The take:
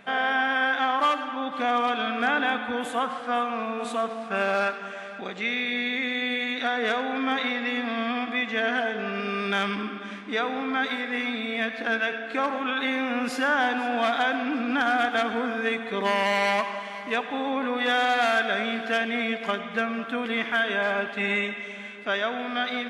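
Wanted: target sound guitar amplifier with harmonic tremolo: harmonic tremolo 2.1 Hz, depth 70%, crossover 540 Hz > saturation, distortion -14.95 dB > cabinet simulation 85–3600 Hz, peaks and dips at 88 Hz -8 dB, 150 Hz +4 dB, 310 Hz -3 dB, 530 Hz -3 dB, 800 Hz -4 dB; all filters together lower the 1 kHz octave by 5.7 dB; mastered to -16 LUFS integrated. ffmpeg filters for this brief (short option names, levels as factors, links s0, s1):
-filter_complex "[0:a]equalizer=f=1000:t=o:g=-5.5,acrossover=split=540[s0][s1];[s0]aeval=exprs='val(0)*(1-0.7/2+0.7/2*cos(2*PI*2.1*n/s))':c=same[s2];[s1]aeval=exprs='val(0)*(1-0.7/2-0.7/2*cos(2*PI*2.1*n/s))':c=same[s3];[s2][s3]amix=inputs=2:normalize=0,asoftclip=threshold=0.0596,highpass=85,equalizer=f=88:t=q:w=4:g=-8,equalizer=f=150:t=q:w=4:g=4,equalizer=f=310:t=q:w=4:g=-3,equalizer=f=530:t=q:w=4:g=-3,equalizer=f=800:t=q:w=4:g=-4,lowpass=f=3600:w=0.5412,lowpass=f=3600:w=1.3066,volume=7.5"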